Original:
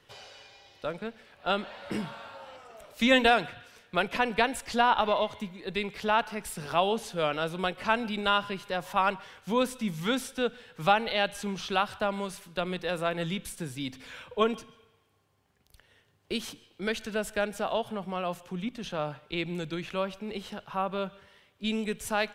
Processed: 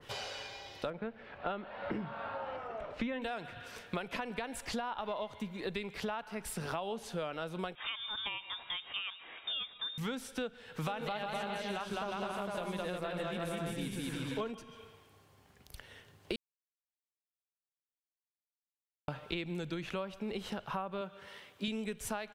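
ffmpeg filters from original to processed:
-filter_complex "[0:a]asettb=1/sr,asplit=3[a][b][c];[a]atrim=end=0.904[d];[b]atrim=start=0.9:end=3.22,asetpts=PTS-STARTPTS,afade=t=in:d=0.004:c=qsin,afade=t=out:st=2.316:d=0.004:c=qsin,lowpass=2.2k[e];[c]atrim=start=3.216[f];[d][e]acrossfade=d=0.004:c1=hsin:c2=qsin[g];[g][f]acrossfade=d=0.004:c1=qsin:c2=hsin,asettb=1/sr,asplit=3[h][i][j];[h]atrim=end=7.754[k];[i]atrim=start=7.75:end=9.98,asetpts=PTS-STARTPTS,afade=t=in:d=0.004:c=qsin,afade=t=out:st=2.226:d=0.004:c=qsin,lowpass=f=3.2k:t=q:w=0.5098,lowpass=f=3.2k:t=q:w=0.6013,lowpass=f=3.2k:t=q:w=0.9,lowpass=f=3.2k:t=q:w=2.563,afreqshift=-3800[l];[j]atrim=start=9.976[m];[k][l]acrossfade=d=0.004:c1=hsin:c2=qsin[n];[n][m]acrossfade=d=0.004:c1=qsin:c2=hsin,asplit=3[o][p][q];[o]afade=t=out:st=10.86:d=0.02[r];[p]aecho=1:1:210|357|459.9|531.9|582.4|617.6:0.794|0.631|0.501|0.398|0.316|0.251,afade=t=in:st=10.86:d=0.02,afade=t=out:st=14.5:d=0.02[s];[q]afade=t=in:st=14.5:d=0.02[t];[r][s][t]amix=inputs=3:normalize=0,asettb=1/sr,asplit=3[u][v][w];[u]atrim=end=21.014[x];[v]atrim=start=21.01:end=21.68,asetpts=PTS-STARTPTS,afade=t=in:d=0.004:c=qsin,afade=t=out:st=0.666:d=0.004:c=qsin,highpass=f=200:p=1[y];[w]atrim=start=21.676[z];[x][y]acrossfade=d=0.004:c1=hsin:c2=qsin[aa];[aa][z]acrossfade=d=0.004:c1=qsin:c2=hsin,asplit=3[ab][ac][ad];[ab]atrim=end=16.36,asetpts=PTS-STARTPTS,afade=t=out:st=16.356:d=0.004:c=hsin[ae];[ac]atrim=start=16.36:end=19.08,asetpts=PTS-STARTPTS,volume=0[af];[ad]atrim=start=19.08,asetpts=PTS-STARTPTS,afade=t=in:d=0.004:c=hsin[ag];[ae][af][ag]concat=n=3:v=0:a=1,alimiter=limit=-15.5dB:level=0:latency=1:release=122,acompressor=threshold=-43dB:ratio=8,adynamicequalizer=threshold=0.00112:dfrequency=1900:dqfactor=0.7:tfrequency=1900:tqfactor=0.7:attack=5:release=100:ratio=0.375:range=1.5:mode=cutabove:tftype=highshelf,volume=8dB"

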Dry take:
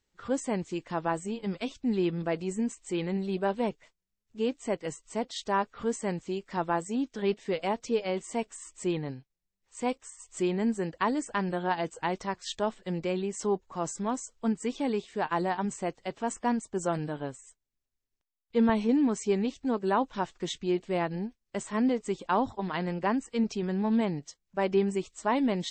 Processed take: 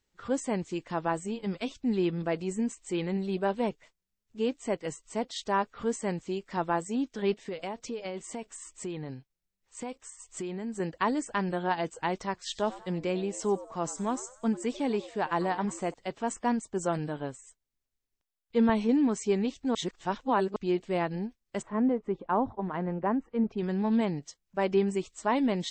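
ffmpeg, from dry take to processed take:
-filter_complex "[0:a]asettb=1/sr,asplit=3[a][b][c];[a]atrim=end=7.434[d];[b]atrim=start=7.43:end=10.8,asetpts=PTS-STARTPTS,afade=t=in:d=0.004:c=qsin,afade=t=out:st=3.366:d=0.004:c=qsin,acompressor=threshold=-32dB:ratio=6:attack=3.2:release=140:knee=1:detection=peak[e];[c]atrim=start=10.796[f];[d][e]acrossfade=d=0.004:c1=hsin:c2=qsin[g];[g][f]acrossfade=d=0.004:c1=qsin:c2=hsin,asettb=1/sr,asplit=3[h][i][j];[h]atrim=end=12.374[k];[i]atrim=start=12.37:end=15.94,asetpts=PTS-STARTPTS,afade=t=in:d=0.004:c=qsin,afade=t=out:st=3.566:d=0.004:c=qsin,asplit=4[l][m][n][o];[m]adelay=94,afreqshift=130,volume=-17dB[p];[n]adelay=188,afreqshift=260,volume=-25.2dB[q];[o]adelay=282,afreqshift=390,volume=-33.4dB[r];[l][p][q][r]amix=inputs=4:normalize=0,atrim=end_sample=157437[s];[j]atrim=start=15.936[t];[k][s]acrossfade=d=0.004:c1=hsin:c2=qsin[u];[u][t]acrossfade=d=0.004:c1=qsin:c2=hsin,asplit=3[v][w][x];[v]afade=t=out:st=21.61:d=0.02[y];[w]lowpass=1.3k,afade=t=in:st=21.61:d=0.02,afade=t=out:st=23.57:d=0.02[z];[x]afade=t=in:st=23.57:d=0.02[aa];[y][z][aa]amix=inputs=3:normalize=0,asplit=3[ab][ac][ad];[ab]atrim=end=19.752[ae];[ac]atrim=start=19.748:end=20.562,asetpts=PTS-STARTPTS,areverse[af];[ad]atrim=start=20.558[ag];[ae][af]acrossfade=d=0.004:c1=hsin:c2=hsin[ah];[ah][ag]acrossfade=d=0.004:c1=hsin:c2=hsin"

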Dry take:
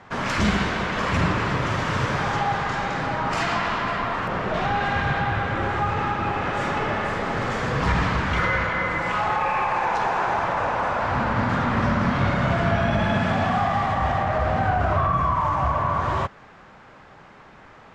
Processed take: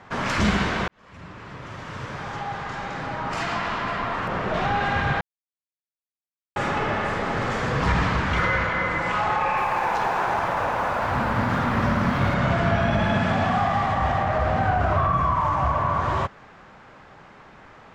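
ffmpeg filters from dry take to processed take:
-filter_complex "[0:a]asettb=1/sr,asplit=3[a][b][c];[a]atrim=end=9.574[d];[b]atrim=start=9.57:end=12.35,asetpts=PTS-STARTPTS,afade=t=in:d=0.004:c=qsin,afade=t=out:st=2.776:d=0.004:c=qsin,aeval=exprs='sgn(val(0))*max(abs(val(0))-0.00531,0)':c=same[e];[c]atrim=start=12.346[f];[d][e]acrossfade=d=0.004:c1=hsin:c2=qsin[g];[g][f]acrossfade=d=0.004:c1=qsin:c2=hsin,asplit=4[h][i][j][k];[h]atrim=end=0.88,asetpts=PTS-STARTPTS,afade=t=out:st=0.876:d=0.004:c=hsin[l];[i]atrim=start=0.88:end=5.21,asetpts=PTS-STARTPTS,afade=t=in:d=3.73,afade=t=out:st=4.326:d=0.004:c=hsin[m];[j]atrim=start=5.21:end=6.56,asetpts=PTS-STARTPTS,volume=0[n];[k]atrim=start=6.56,asetpts=PTS-STARTPTS,afade=t=in:d=0.004:c=hsin[o];[l][m][n][o]concat=n=4:v=0:a=1"

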